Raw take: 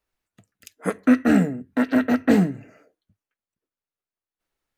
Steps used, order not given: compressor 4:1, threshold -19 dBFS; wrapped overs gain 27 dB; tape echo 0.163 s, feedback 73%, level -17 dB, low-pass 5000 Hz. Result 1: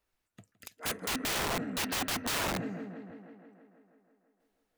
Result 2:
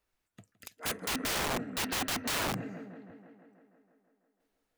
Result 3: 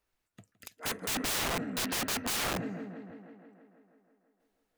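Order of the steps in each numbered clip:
tape echo > compressor > wrapped overs; compressor > tape echo > wrapped overs; tape echo > wrapped overs > compressor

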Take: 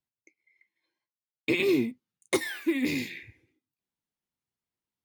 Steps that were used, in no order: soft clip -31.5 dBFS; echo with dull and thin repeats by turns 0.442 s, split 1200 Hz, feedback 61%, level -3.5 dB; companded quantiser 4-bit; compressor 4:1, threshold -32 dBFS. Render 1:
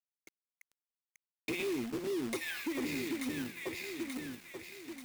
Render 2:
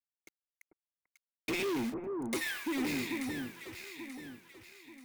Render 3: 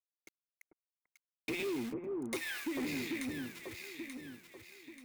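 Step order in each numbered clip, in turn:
echo with dull and thin repeats by turns > compressor > soft clip > companded quantiser; soft clip > compressor > companded quantiser > echo with dull and thin repeats by turns; compressor > companded quantiser > echo with dull and thin repeats by turns > soft clip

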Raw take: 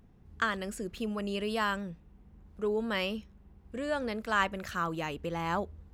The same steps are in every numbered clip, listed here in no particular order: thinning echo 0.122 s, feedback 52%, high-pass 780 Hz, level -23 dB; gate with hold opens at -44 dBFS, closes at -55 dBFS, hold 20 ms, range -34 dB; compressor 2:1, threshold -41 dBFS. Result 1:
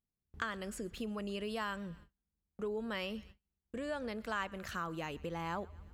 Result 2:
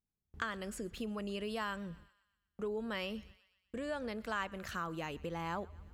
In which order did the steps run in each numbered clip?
thinning echo > compressor > gate with hold; gate with hold > thinning echo > compressor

